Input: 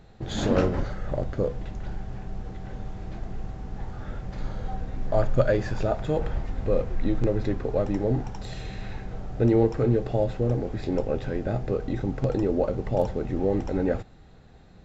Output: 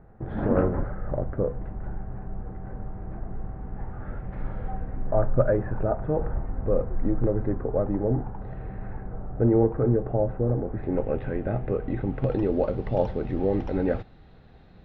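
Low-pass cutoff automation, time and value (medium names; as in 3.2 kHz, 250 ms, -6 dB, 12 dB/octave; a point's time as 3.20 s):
low-pass 24 dB/octave
3.33 s 1.6 kHz
4.62 s 2.3 kHz
5.18 s 1.5 kHz
10.67 s 1.5 kHz
11.10 s 2.5 kHz
11.90 s 2.5 kHz
12.59 s 4.2 kHz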